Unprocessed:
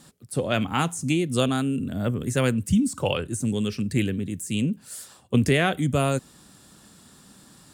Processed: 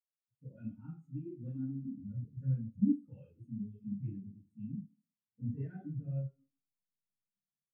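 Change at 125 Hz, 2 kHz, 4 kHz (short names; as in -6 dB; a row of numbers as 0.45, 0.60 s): -12.5 dB, under -35 dB, under -40 dB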